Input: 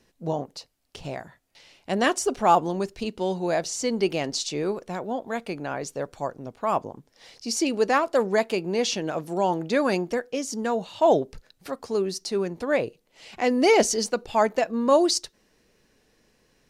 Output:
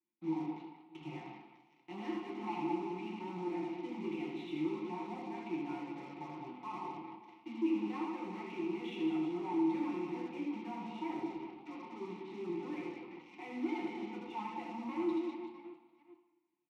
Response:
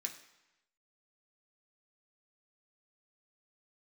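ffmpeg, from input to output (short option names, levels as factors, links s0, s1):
-filter_complex "[0:a]aresample=8000,acrusher=bits=5:mode=log:mix=0:aa=0.000001,aresample=44100,aeval=exprs='0.473*sin(PI/2*2*val(0)/0.473)':c=same,alimiter=limit=0.178:level=0:latency=1:release=43,aecho=1:1:5.6:0.93,aecho=1:1:80|200|380|650|1055:0.631|0.398|0.251|0.158|0.1,flanger=delay=8.8:depth=6.8:regen=74:speed=0.27:shape=sinusoidal,aeval=exprs='0.0891*(cos(1*acos(clip(val(0)/0.0891,-1,1)))-cos(1*PI/2))+0.0141*(cos(7*acos(clip(val(0)/0.0891,-1,1)))-cos(7*PI/2))':c=same,asplit=3[s0][s1][s2];[s0]bandpass=f=300:t=q:w=8,volume=1[s3];[s1]bandpass=f=870:t=q:w=8,volume=0.501[s4];[s2]bandpass=f=2240:t=q:w=8,volume=0.355[s5];[s3][s4][s5]amix=inputs=3:normalize=0[s6];[1:a]atrim=start_sample=2205,asetrate=32193,aresample=44100[s7];[s6][s7]afir=irnorm=-1:irlink=0,volume=0.794"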